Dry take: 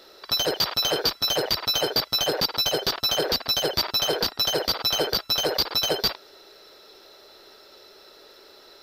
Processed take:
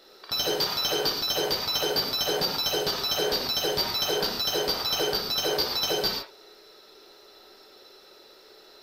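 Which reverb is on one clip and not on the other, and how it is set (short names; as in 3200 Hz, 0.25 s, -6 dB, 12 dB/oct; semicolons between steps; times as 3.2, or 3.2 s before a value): non-linear reverb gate 0.16 s flat, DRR -0.5 dB; gain -5.5 dB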